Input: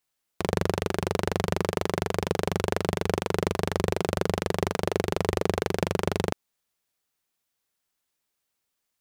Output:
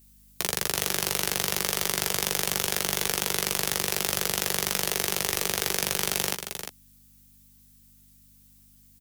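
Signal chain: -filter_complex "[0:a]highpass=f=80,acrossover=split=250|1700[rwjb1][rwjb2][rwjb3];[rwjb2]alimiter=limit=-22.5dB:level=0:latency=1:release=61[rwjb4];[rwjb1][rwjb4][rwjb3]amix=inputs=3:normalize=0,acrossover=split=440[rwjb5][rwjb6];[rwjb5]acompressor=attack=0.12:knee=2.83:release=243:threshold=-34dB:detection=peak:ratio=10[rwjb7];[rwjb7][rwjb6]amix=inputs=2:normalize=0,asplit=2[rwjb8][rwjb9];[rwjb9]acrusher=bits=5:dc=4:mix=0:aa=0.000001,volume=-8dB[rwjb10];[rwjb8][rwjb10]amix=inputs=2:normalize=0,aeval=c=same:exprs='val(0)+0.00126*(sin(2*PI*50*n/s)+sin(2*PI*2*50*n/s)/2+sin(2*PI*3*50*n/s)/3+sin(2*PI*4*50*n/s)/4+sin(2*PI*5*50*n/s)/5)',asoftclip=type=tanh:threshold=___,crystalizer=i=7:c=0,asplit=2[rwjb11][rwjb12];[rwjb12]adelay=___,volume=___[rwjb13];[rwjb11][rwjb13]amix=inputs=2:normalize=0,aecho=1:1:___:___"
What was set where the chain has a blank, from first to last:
-24.5dB, 15, -8dB, 352, 0.398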